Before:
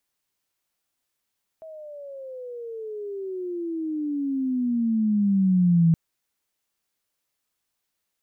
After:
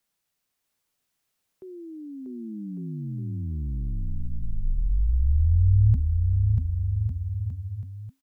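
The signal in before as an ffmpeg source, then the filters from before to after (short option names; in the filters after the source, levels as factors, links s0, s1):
-f lavfi -i "aevalsrc='pow(10,(-14+24*(t/4.32-1))/20)*sin(2*PI*648*4.32/(-24*log(2)/12)*(exp(-24*log(2)/12*t/4.32)-1))':d=4.32:s=44100"
-filter_complex "[0:a]afreqshift=-270,asplit=2[s0][s1];[s1]aecho=0:1:640|1152|1562|1889|2151:0.631|0.398|0.251|0.158|0.1[s2];[s0][s2]amix=inputs=2:normalize=0"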